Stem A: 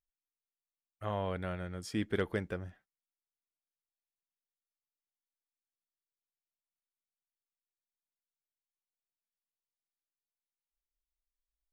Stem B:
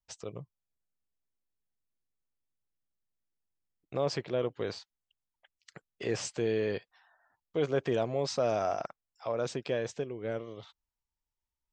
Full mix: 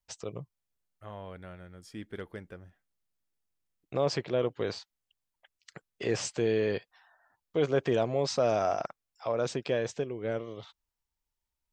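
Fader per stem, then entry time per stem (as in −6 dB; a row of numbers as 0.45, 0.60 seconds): −8.0, +2.5 decibels; 0.00, 0.00 seconds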